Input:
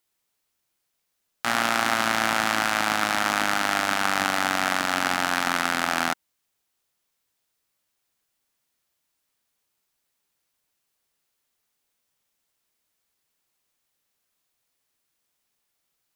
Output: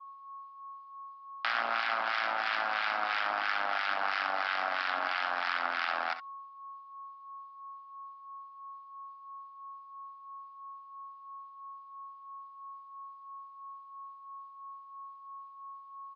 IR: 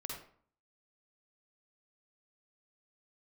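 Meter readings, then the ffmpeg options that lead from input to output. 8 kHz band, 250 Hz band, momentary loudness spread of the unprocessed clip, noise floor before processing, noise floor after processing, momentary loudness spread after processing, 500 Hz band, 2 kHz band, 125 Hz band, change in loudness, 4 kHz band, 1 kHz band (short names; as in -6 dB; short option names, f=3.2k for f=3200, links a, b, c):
under -30 dB, -22.0 dB, 2 LU, -77 dBFS, -52 dBFS, 17 LU, -9.0 dB, -7.0 dB, under -25 dB, -8.0 dB, -10.0 dB, -6.5 dB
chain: -filter_complex "[0:a]bandreject=f=1.8k:w=21,aresample=11025,volume=15.5dB,asoftclip=hard,volume=-15.5dB,aresample=44100,acontrast=79,aeval=exprs='val(0)+0.0141*sin(2*PI*1100*n/s)':c=same,acrossover=split=1300[a][b];[a]aeval=exprs='val(0)*(1-0.7/2+0.7/2*cos(2*PI*3*n/s))':c=same[c];[b]aeval=exprs='val(0)*(1-0.7/2-0.7/2*cos(2*PI*3*n/s))':c=same[d];[c][d]amix=inputs=2:normalize=0,agate=range=-33dB:threshold=-39dB:ratio=3:detection=peak,acompressor=threshold=-32dB:ratio=2,highpass=690,lowpass=4.3k,asplit=2[e][f];[f]aecho=0:1:61|69:0.224|0.168[g];[e][g]amix=inputs=2:normalize=0"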